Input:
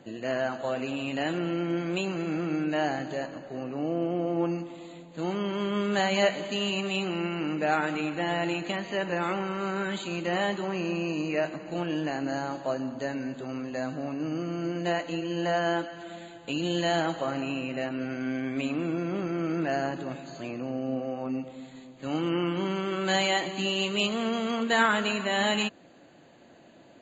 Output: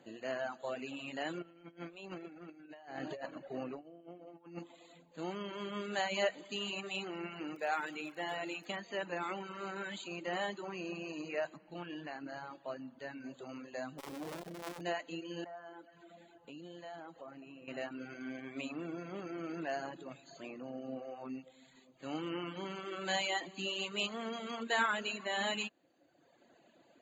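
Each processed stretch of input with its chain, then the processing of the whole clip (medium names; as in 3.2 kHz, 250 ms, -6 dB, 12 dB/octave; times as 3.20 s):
1.42–4.59 s: compressor with a negative ratio -34 dBFS, ratio -0.5 + distance through air 86 m
7.54–8.67 s: high-pass 260 Hz 6 dB/octave + crackle 55 per s -40 dBFS
11.57–13.24 s: Gaussian low-pass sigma 1.7 samples + dynamic bell 480 Hz, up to -5 dB, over -43 dBFS, Q 0.77
13.98–14.81 s: square wave that keeps the level + transformer saturation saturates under 510 Hz
15.44–17.68 s: treble shelf 2 kHz -10 dB + compression 2:1, threshold -42 dBFS
whole clip: reverb removal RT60 1.1 s; bass shelf 180 Hz -10 dB; hum notches 60/120 Hz; trim -7 dB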